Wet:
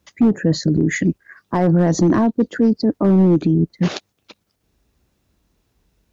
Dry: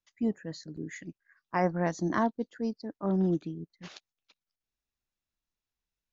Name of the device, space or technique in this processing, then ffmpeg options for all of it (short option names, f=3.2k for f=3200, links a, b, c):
mastering chain: -af "highpass=f=42:w=0.5412,highpass=f=42:w=1.3066,equalizer=f=410:t=o:w=1.3:g=2.5,acompressor=threshold=-28dB:ratio=3,asoftclip=type=tanh:threshold=-20dB,tiltshelf=f=650:g=7,asoftclip=type=hard:threshold=-22dB,alimiter=level_in=33.5dB:limit=-1dB:release=50:level=0:latency=1,volume=-7.5dB"